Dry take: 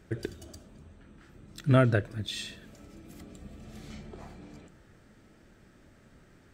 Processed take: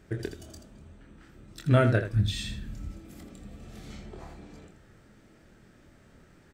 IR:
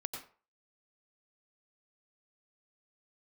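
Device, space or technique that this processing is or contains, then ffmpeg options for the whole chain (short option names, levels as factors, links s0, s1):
slapback doubling: -filter_complex "[0:a]asplit=3[s0][s1][s2];[s0]afade=t=out:st=2.12:d=0.02[s3];[s1]asubboost=boost=10.5:cutoff=160,afade=t=in:st=2.12:d=0.02,afade=t=out:st=2.91:d=0.02[s4];[s2]afade=t=in:st=2.91:d=0.02[s5];[s3][s4][s5]amix=inputs=3:normalize=0,asplit=3[s6][s7][s8];[s7]adelay=25,volume=0.447[s9];[s8]adelay=82,volume=0.316[s10];[s6][s9][s10]amix=inputs=3:normalize=0"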